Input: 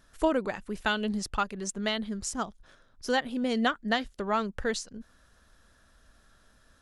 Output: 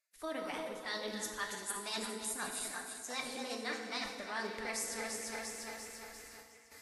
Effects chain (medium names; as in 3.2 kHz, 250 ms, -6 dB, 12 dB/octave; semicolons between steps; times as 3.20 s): backward echo that repeats 173 ms, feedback 71%, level -12 dB; tilt EQ +2.5 dB/octave; gate with hold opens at -48 dBFS; reverse; compression 5:1, threshold -44 dBFS, peak gain reduction 21 dB; reverse; formant shift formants +4 st; on a send: repeats whose band climbs or falls 177 ms, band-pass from 360 Hz, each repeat 1.4 oct, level -4 dB; on the sum: FDN reverb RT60 1.4 s, low-frequency decay 1×, high-frequency decay 0.8×, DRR 2.5 dB; trim +3.5 dB; Vorbis 48 kbps 48 kHz